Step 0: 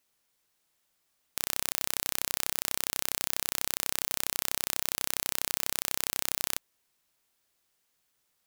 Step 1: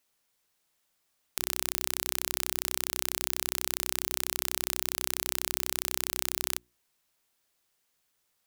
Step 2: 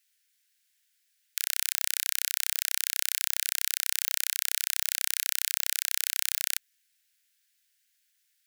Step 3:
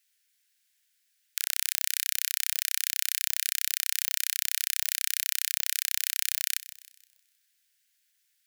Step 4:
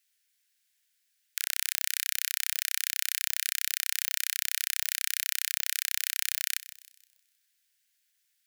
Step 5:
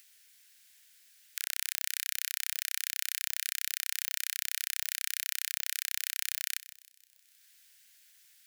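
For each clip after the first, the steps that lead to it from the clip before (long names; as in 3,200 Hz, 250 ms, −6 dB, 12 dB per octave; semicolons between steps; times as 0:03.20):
mains-hum notches 60/120/180/240/300/360 Hz
Butterworth high-pass 1,500 Hz 72 dB per octave; level +3 dB
feedback echo with a high-pass in the loop 157 ms, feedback 41%, high-pass 1,100 Hz, level −15 dB
dynamic equaliser 1,600 Hz, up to +4 dB, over −51 dBFS, Q 0.83; level −2 dB
upward compression, threshold −42 dBFS; level −4 dB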